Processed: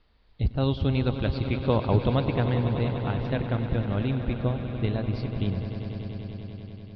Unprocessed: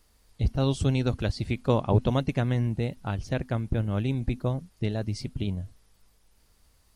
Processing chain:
Butterworth low-pass 4,300 Hz 48 dB per octave
echo that builds up and dies away 97 ms, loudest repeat 5, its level −13.5 dB

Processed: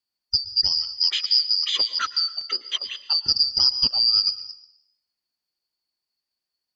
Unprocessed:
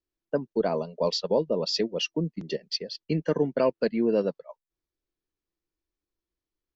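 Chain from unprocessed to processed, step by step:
band-splitting scrambler in four parts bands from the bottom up 2341
dense smooth reverb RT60 0.7 s, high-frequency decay 1×, pre-delay 100 ms, DRR 14 dB
level +4 dB

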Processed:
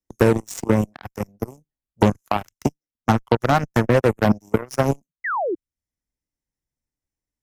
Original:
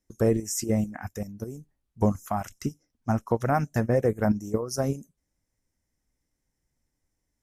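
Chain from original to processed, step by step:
harmonic generator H 6 −42 dB, 7 −17 dB, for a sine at −11.5 dBFS
sound drawn into the spectrogram fall, 0:05.24–0:05.55, 310–2,100 Hz −41 dBFS
multiband upward and downward compressor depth 70%
level +7.5 dB

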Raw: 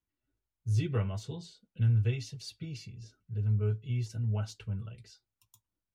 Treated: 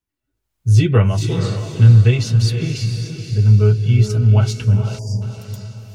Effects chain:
automatic gain control gain up to 14 dB
feedback delay with all-pass diffusion 486 ms, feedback 43%, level −7 dB
time-frequency box erased 0:04.99–0:05.22, 1,000–4,600 Hz
level +3.5 dB

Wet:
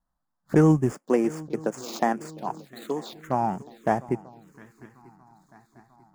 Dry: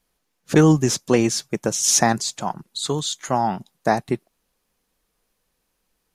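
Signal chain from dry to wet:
running median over 15 samples
0:00.93–0:03.22: high-pass filter 220 Hz 24 dB per octave
feedback echo with a long and a short gap by turns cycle 942 ms, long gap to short 3 to 1, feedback 51%, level −20 dB
phaser swept by the level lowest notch 420 Hz, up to 4,000 Hz, full sweep at −21.5 dBFS
level −3.5 dB

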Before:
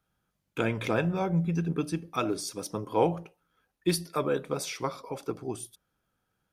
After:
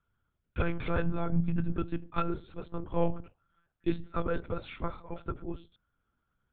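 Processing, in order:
parametric band 1,400 Hz +10 dB 0.26 octaves
one-pitch LPC vocoder at 8 kHz 170 Hz
low-shelf EQ 250 Hz +8.5 dB
level −6.5 dB

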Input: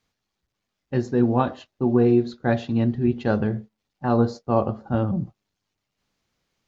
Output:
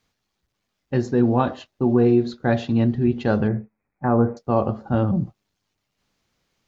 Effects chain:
in parallel at −1 dB: brickwall limiter −17 dBFS, peak gain reduction 10.5 dB
0:03.48–0:04.37: on the sum: linear-phase brick-wall low-pass 2,600 Hz
level −2 dB

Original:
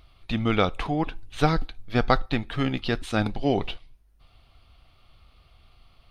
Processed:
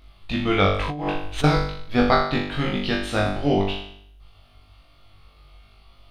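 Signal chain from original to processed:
flutter between parallel walls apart 3.5 metres, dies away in 0.65 s
0:00.90–0:01.44: compressor whose output falls as the input rises −26 dBFS, ratio −1

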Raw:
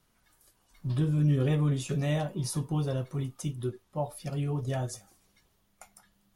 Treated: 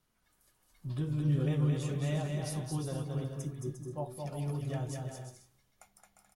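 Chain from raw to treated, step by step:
healed spectral selection 0:03.27–0:03.71, 1,300–4,900 Hz after
bouncing-ball delay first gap 220 ms, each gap 0.6×, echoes 5
on a send at −21 dB: convolution reverb RT60 0.50 s, pre-delay 3 ms
on the sum: level −7 dB

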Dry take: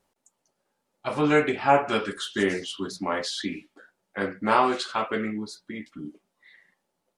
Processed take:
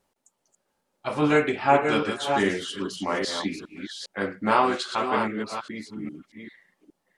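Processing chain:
delay that plays each chunk backwards 406 ms, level −6 dB

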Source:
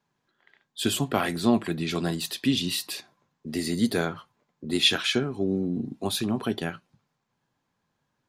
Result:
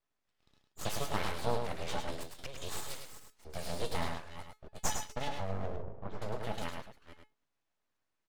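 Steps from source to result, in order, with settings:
delay that plays each chunk backwards 246 ms, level −11 dB
0:04.68–0:05.21: noise gate −21 dBFS, range −43 dB
tuned comb filter 430 Hz, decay 0.22 s, harmonics all, mix 80%
full-wave rectification
dynamic equaliser 900 Hz, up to +3 dB, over −53 dBFS, Q 0.89
0:01.92–0:02.77: gate pattern ".xxx.xx..x." 195 BPM −12 dB
0:05.72–0:06.22: head-to-tape spacing loss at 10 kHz 44 dB
single-tap delay 104 ms −5.5 dB
highs frequency-modulated by the lows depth 0.23 ms
level +2 dB

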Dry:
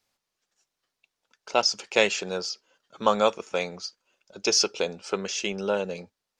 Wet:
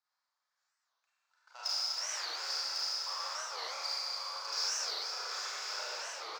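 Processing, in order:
running median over 15 samples
reversed playback
downward compressor 10 to 1, threshold −30 dBFS, peak gain reduction 15.5 dB
reversed playback
high-frequency loss of the air 210 metres
brickwall limiter −28 dBFS, peak gain reduction 8.5 dB
high-pass filter 1,000 Hz 24 dB per octave
on a send: single-tap delay 1,100 ms −9 dB
on the sum: speech leveller 0.5 s
high shelf with overshoot 4,200 Hz +13 dB, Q 1.5
four-comb reverb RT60 3.8 s, combs from 31 ms, DRR −10 dB
wow of a warped record 45 rpm, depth 250 cents

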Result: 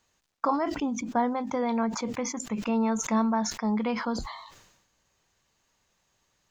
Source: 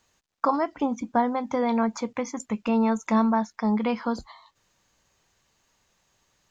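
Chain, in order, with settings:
gain on a spectral selection 0:00.69–0:00.98, 440–2,400 Hz −7 dB
level that may fall only so fast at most 58 dB per second
level −3.5 dB

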